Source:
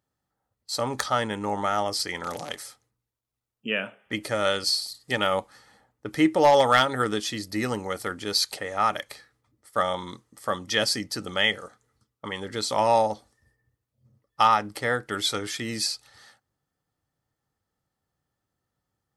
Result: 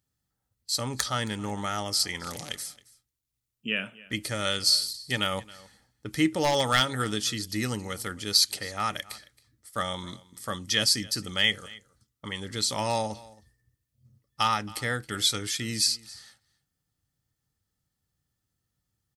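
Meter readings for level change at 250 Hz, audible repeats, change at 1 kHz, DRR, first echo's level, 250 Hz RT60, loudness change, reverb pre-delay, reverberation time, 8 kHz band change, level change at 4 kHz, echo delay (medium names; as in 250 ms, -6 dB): -2.5 dB, 1, -7.0 dB, no reverb, -21.5 dB, no reverb, -2.0 dB, no reverb, no reverb, +4.0 dB, +2.0 dB, 271 ms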